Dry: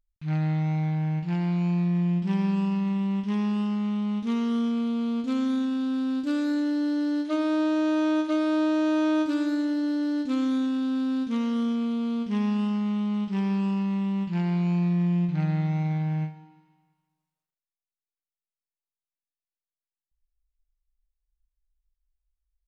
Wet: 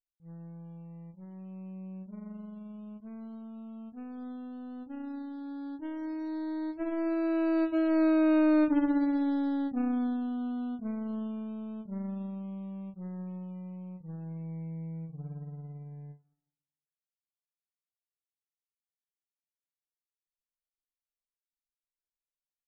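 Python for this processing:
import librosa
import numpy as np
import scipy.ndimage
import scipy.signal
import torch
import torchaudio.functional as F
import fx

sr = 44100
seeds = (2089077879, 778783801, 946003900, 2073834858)

y = scipy.signal.medfilt(x, 41)
y = fx.doppler_pass(y, sr, speed_mps=25, closest_m=28.0, pass_at_s=8.42)
y = fx.low_shelf(y, sr, hz=160.0, db=11.5)
y = fx.power_curve(y, sr, exponent=1.4)
y = fx.spec_topn(y, sr, count=32)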